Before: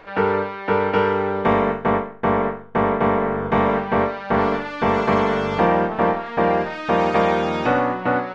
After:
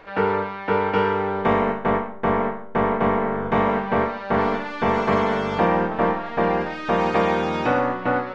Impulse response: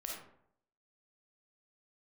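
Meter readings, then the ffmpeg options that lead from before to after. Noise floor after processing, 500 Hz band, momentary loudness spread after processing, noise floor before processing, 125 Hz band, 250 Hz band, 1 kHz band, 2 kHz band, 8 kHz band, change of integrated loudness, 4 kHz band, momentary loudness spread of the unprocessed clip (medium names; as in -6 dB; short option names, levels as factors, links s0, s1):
-34 dBFS, -2.0 dB, 4 LU, -34 dBFS, -2.0 dB, -1.5 dB, -1.5 dB, -1.5 dB, no reading, -2.0 dB, -1.5 dB, 4 LU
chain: -filter_complex "[0:a]asplit=2[s0][s1];[1:a]atrim=start_sample=2205[s2];[s1][s2]afir=irnorm=-1:irlink=0,volume=0.501[s3];[s0][s3]amix=inputs=2:normalize=0,volume=0.631"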